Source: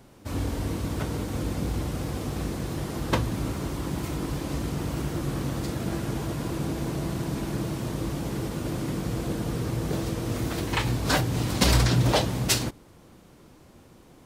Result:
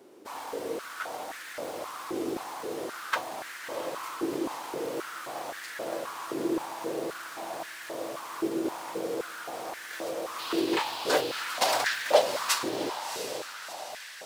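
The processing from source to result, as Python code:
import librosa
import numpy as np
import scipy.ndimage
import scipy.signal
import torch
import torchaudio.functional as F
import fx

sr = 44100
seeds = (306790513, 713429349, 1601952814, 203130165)

p1 = fx.dmg_noise_band(x, sr, seeds[0], low_hz=2500.0, high_hz=4900.0, level_db=-37.0, at=(10.38, 11.4), fade=0.02)
p2 = fx.echo_diffused(p1, sr, ms=691, feedback_pct=55, wet_db=-7.5)
p3 = fx.quant_float(p2, sr, bits=2)
p4 = p2 + (p3 * librosa.db_to_amplitude(-4.0))
p5 = fx.filter_held_highpass(p4, sr, hz=3.8, low_hz=370.0, high_hz=1700.0)
y = p5 * librosa.db_to_amplitude(-8.5)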